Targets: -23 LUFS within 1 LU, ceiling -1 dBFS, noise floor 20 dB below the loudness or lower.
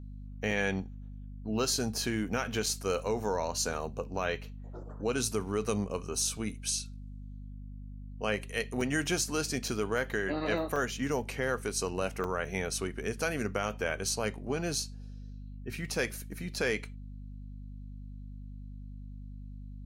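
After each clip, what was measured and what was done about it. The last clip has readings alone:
dropouts 7; longest dropout 2.7 ms; hum 50 Hz; highest harmonic 250 Hz; hum level -41 dBFS; loudness -32.5 LUFS; peak level -15.5 dBFS; loudness target -23.0 LUFS
-> interpolate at 0.51/2.66/8.81/9.68/10.76/12.24/14.22 s, 2.7 ms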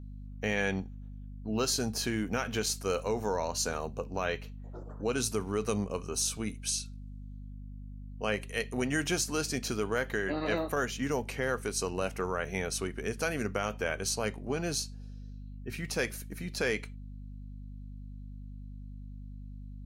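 dropouts 0; hum 50 Hz; highest harmonic 250 Hz; hum level -41 dBFS
-> hum notches 50/100/150/200/250 Hz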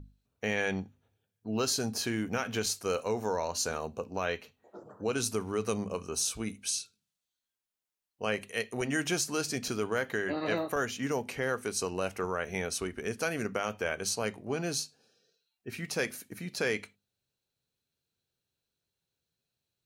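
hum not found; loudness -33.0 LUFS; peak level -16.0 dBFS; loudness target -23.0 LUFS
-> trim +10 dB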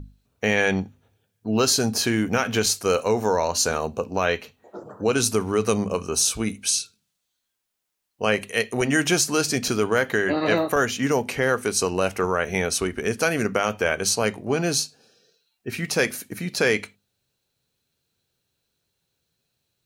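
loudness -23.0 LUFS; peak level -6.0 dBFS; noise floor -78 dBFS

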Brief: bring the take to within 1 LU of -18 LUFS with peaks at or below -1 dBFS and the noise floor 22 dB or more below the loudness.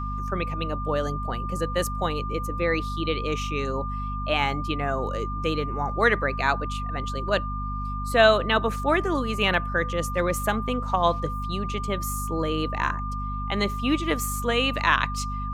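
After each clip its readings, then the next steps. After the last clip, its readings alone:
hum 50 Hz; highest harmonic 250 Hz; hum level -29 dBFS; steady tone 1.2 kHz; tone level -32 dBFS; loudness -25.5 LUFS; peak level -5.5 dBFS; loudness target -18.0 LUFS
-> hum notches 50/100/150/200/250 Hz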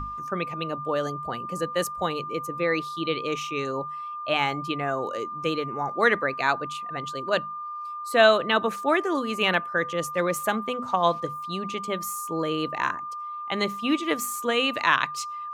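hum not found; steady tone 1.2 kHz; tone level -32 dBFS
-> band-stop 1.2 kHz, Q 30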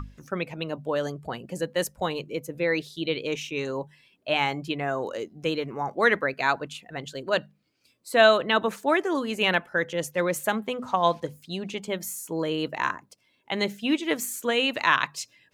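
steady tone not found; loudness -26.5 LUFS; peak level -5.5 dBFS; loudness target -18.0 LUFS
-> trim +8.5 dB; peak limiter -1 dBFS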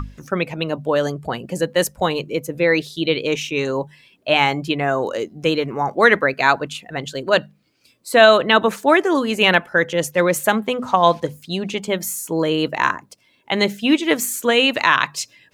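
loudness -18.5 LUFS; peak level -1.0 dBFS; noise floor -59 dBFS

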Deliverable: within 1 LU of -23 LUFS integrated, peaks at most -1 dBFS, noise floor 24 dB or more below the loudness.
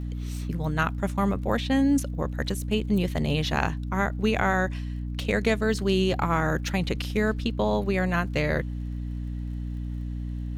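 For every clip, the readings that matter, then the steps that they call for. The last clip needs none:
tick rate 47 per s; hum 60 Hz; highest harmonic 300 Hz; hum level -29 dBFS; loudness -27.0 LUFS; peak level -8.0 dBFS; loudness target -23.0 LUFS
-> de-click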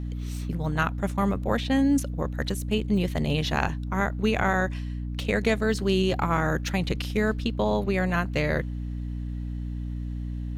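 tick rate 0 per s; hum 60 Hz; highest harmonic 300 Hz; hum level -29 dBFS
-> hum notches 60/120/180/240/300 Hz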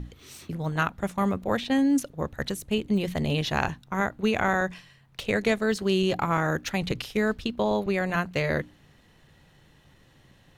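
hum not found; loudness -27.0 LUFS; peak level -8.5 dBFS; loudness target -23.0 LUFS
-> trim +4 dB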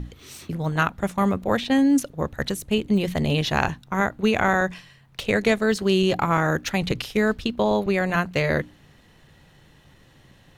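loudness -23.0 LUFS; peak level -4.5 dBFS; noise floor -54 dBFS

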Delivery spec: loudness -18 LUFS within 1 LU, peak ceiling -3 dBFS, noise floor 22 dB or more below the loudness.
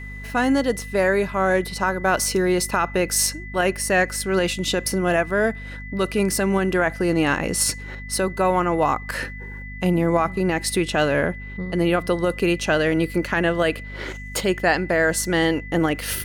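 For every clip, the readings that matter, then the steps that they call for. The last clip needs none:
hum 50 Hz; highest harmonic 250 Hz; hum level -34 dBFS; steady tone 2 kHz; tone level -37 dBFS; loudness -21.5 LUFS; peak level -7.0 dBFS; loudness target -18.0 LUFS
-> hum notches 50/100/150/200/250 Hz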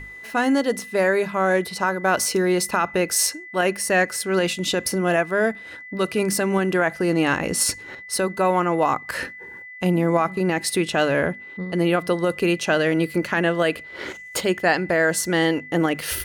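hum not found; steady tone 2 kHz; tone level -37 dBFS
-> band-stop 2 kHz, Q 30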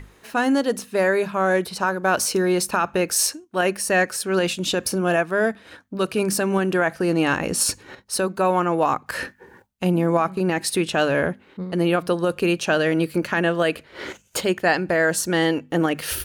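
steady tone not found; loudness -22.0 LUFS; peak level -7.5 dBFS; loudness target -18.0 LUFS
-> trim +4 dB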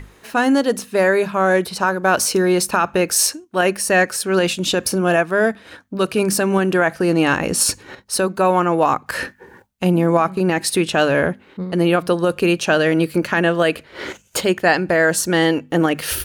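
loudness -18.0 LUFS; peak level -3.5 dBFS; noise floor -51 dBFS

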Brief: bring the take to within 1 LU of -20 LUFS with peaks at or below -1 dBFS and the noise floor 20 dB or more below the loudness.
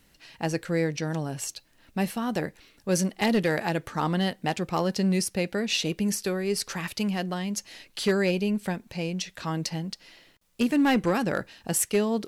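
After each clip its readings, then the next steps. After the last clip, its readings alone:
clipped samples 0.4%; clipping level -16.5 dBFS; loudness -27.5 LUFS; peak level -16.5 dBFS; loudness target -20.0 LUFS
-> clip repair -16.5 dBFS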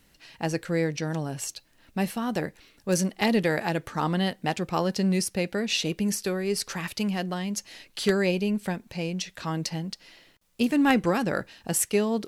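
clipped samples 0.0%; loudness -27.5 LUFS; peak level -7.5 dBFS; loudness target -20.0 LUFS
-> trim +7.5 dB; peak limiter -1 dBFS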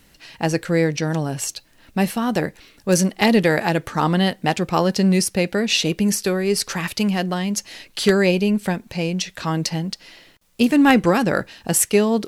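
loudness -20.0 LUFS; peak level -1.0 dBFS; noise floor -54 dBFS

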